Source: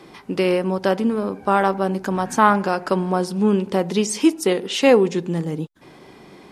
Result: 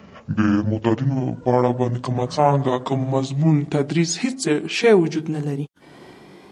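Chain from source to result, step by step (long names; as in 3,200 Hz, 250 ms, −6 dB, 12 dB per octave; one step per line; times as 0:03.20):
pitch glide at a constant tempo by −10.5 semitones ending unshifted
high-pass filter 50 Hz
boost into a limiter +5.5 dB
level −3.5 dB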